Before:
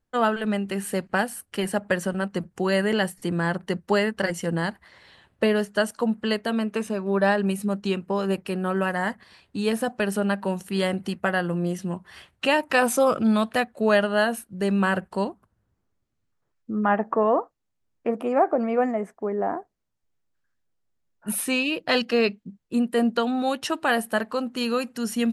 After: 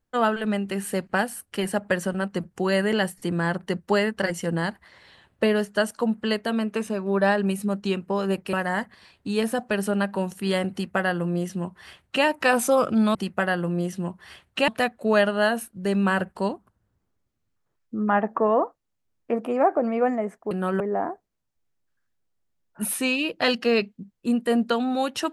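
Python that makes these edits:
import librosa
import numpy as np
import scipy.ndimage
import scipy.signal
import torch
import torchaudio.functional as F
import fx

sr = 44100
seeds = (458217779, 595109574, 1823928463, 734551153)

y = fx.edit(x, sr, fx.move(start_s=8.53, length_s=0.29, to_s=19.27),
    fx.duplicate(start_s=11.01, length_s=1.53, to_s=13.44), tone=tone)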